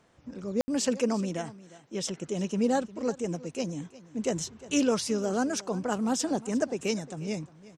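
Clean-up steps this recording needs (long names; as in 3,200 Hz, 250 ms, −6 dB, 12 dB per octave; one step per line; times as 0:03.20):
ambience match 0:00.61–0:00.68
echo removal 355 ms −18.5 dB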